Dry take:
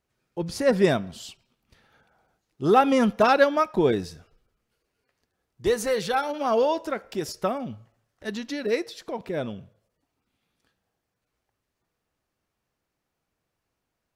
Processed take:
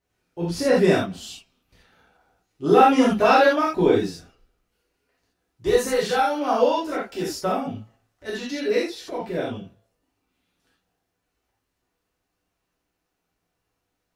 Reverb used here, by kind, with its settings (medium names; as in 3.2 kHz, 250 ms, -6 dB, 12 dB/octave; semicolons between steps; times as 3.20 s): gated-style reverb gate 110 ms flat, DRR -7.5 dB; trim -5 dB